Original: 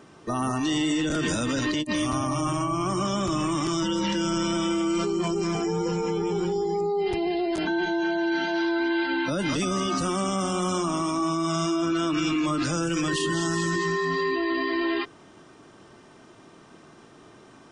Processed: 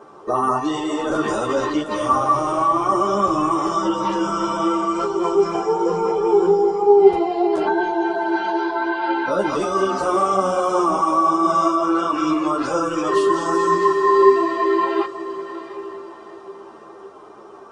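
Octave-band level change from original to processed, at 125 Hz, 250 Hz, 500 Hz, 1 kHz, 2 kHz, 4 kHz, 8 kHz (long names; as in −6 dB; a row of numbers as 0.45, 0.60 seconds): −5.0, +3.0, +10.0, +12.0, +1.5, −3.5, −3.5 decibels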